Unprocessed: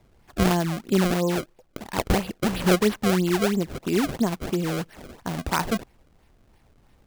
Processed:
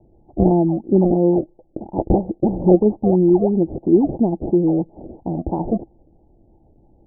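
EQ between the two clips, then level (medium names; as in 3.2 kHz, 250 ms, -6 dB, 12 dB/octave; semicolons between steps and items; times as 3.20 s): Chebyshev low-pass 850 Hz, order 6; peaking EQ 330 Hz +10.5 dB 0.28 oct; +5.0 dB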